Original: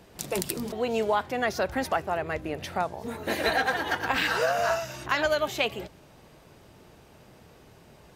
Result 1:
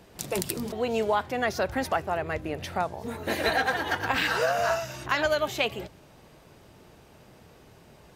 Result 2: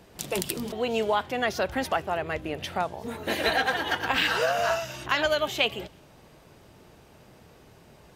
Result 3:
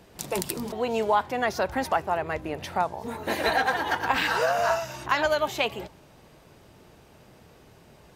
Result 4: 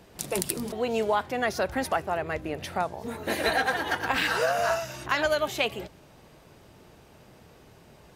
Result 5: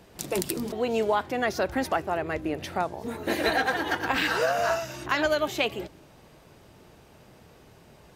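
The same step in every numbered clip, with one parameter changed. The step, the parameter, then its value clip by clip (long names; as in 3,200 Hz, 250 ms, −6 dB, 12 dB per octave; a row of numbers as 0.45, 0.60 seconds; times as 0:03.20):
dynamic equaliser, frequency: 100, 3,100, 930, 9,900, 320 Hertz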